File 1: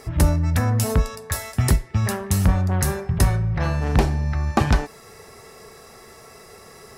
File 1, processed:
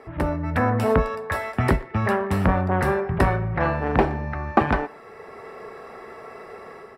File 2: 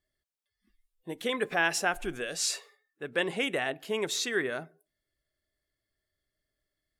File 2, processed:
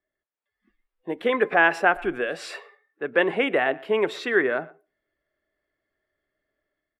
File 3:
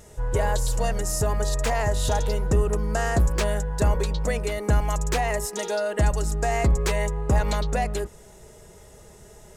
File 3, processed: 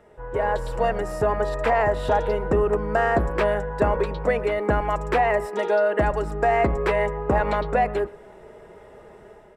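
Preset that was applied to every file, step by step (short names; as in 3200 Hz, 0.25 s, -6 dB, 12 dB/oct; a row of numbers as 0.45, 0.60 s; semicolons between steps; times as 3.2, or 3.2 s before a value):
three-band isolator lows -13 dB, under 230 Hz, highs -24 dB, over 2500 Hz; notch 6500 Hz, Q 7.2; AGC gain up to 7 dB; speakerphone echo 0.12 s, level -22 dB; match loudness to -23 LUFS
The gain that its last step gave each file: +0.5, +3.0, -0.5 dB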